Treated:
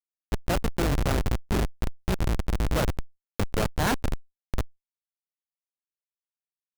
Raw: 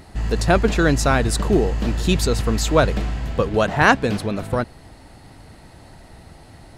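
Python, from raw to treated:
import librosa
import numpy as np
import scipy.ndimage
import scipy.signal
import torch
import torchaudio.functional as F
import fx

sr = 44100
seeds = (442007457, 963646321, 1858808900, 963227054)

y = fx.hum_notches(x, sr, base_hz=60, count=9)
y = fx.schmitt(y, sr, flips_db=-14.0)
y = fx.env_flatten(y, sr, amount_pct=50)
y = F.gain(torch.from_numpy(y), -3.0).numpy()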